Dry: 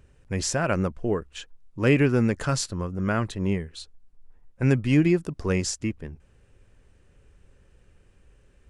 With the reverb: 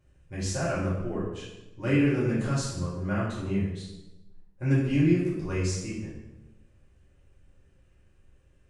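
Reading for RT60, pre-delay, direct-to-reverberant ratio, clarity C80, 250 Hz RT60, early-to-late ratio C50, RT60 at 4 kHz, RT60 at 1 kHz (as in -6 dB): 1.0 s, 3 ms, -9.0 dB, 4.5 dB, 1.2 s, 1.5 dB, 0.75 s, 0.90 s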